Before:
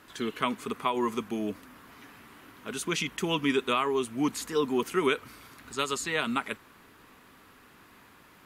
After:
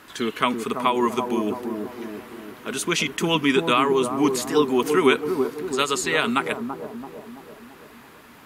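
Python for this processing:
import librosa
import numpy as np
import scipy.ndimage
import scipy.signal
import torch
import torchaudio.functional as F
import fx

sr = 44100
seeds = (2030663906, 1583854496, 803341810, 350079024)

y = fx.low_shelf(x, sr, hz=160.0, db=-5.0)
y = fx.echo_bbd(y, sr, ms=334, stages=2048, feedback_pct=55, wet_db=-5)
y = y * librosa.db_to_amplitude(7.5)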